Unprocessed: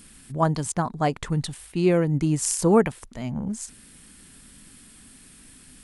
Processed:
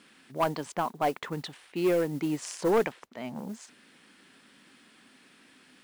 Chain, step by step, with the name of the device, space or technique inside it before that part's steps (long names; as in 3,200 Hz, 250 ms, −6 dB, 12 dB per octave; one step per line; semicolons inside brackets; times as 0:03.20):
carbon microphone (band-pass filter 340–3,500 Hz; soft clipping −18 dBFS, distortion −12 dB; noise that follows the level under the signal 23 dB)
0:02.70–0:03.39: high-shelf EQ 9,700 Hz −6 dB